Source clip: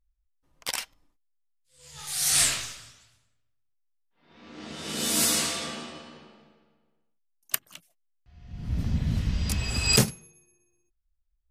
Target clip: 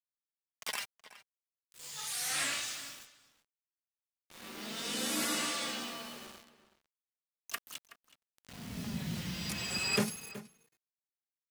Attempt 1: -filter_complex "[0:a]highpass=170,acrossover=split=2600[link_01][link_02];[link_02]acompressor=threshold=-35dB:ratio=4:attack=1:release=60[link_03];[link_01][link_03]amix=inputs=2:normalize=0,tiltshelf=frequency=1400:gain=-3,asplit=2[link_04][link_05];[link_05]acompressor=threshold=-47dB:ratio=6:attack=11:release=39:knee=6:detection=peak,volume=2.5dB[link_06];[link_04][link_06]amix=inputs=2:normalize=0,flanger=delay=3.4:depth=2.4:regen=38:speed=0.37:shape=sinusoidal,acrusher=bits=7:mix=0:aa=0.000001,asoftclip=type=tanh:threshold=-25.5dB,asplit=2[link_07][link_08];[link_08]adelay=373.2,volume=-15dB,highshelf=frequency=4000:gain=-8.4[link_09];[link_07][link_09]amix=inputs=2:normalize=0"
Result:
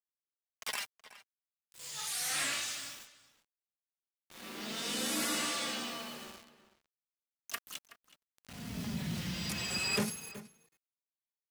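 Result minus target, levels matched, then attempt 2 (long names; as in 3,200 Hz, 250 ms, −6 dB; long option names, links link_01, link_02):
soft clipping: distortion +8 dB; downward compressor: peak gain reduction −5.5 dB
-filter_complex "[0:a]highpass=170,acrossover=split=2600[link_01][link_02];[link_02]acompressor=threshold=-35dB:ratio=4:attack=1:release=60[link_03];[link_01][link_03]amix=inputs=2:normalize=0,tiltshelf=frequency=1400:gain=-3,asplit=2[link_04][link_05];[link_05]acompressor=threshold=-53.5dB:ratio=6:attack=11:release=39:knee=6:detection=peak,volume=2.5dB[link_06];[link_04][link_06]amix=inputs=2:normalize=0,flanger=delay=3.4:depth=2.4:regen=38:speed=0.37:shape=sinusoidal,acrusher=bits=7:mix=0:aa=0.000001,asoftclip=type=tanh:threshold=-19dB,asplit=2[link_07][link_08];[link_08]adelay=373.2,volume=-15dB,highshelf=frequency=4000:gain=-8.4[link_09];[link_07][link_09]amix=inputs=2:normalize=0"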